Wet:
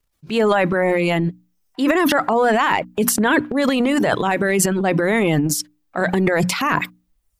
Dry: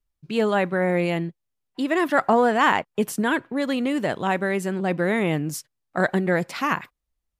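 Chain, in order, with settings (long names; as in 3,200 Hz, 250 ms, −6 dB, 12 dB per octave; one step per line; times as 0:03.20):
low-shelf EQ 120 Hz −5 dB
brickwall limiter −16 dBFS, peak gain reduction 10.5 dB
reverb reduction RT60 0.73 s
mains-hum notches 60/120/180/240/300 Hz
transient designer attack −3 dB, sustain +12 dB
level +8.5 dB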